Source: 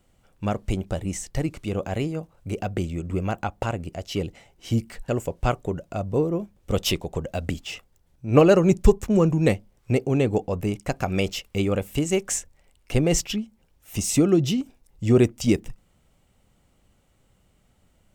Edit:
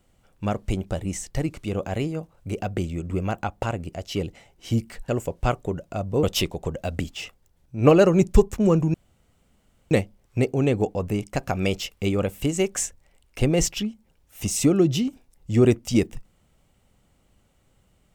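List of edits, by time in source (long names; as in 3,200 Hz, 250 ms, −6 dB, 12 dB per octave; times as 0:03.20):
0:06.23–0:06.73: remove
0:09.44: splice in room tone 0.97 s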